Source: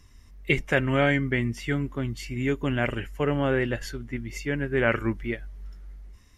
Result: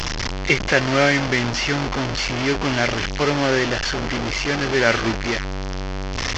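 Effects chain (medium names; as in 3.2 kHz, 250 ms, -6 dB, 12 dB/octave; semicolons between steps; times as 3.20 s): one-bit delta coder 32 kbps, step -21 dBFS; bass shelf 230 Hz -7 dB; band-stop 3.8 kHz, Q 17; trim +6.5 dB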